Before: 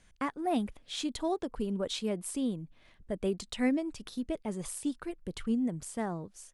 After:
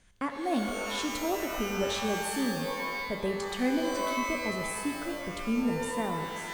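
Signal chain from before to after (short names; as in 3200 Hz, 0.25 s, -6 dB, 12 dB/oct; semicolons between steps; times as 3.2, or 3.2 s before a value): shimmer reverb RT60 1.9 s, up +12 st, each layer -2 dB, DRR 5 dB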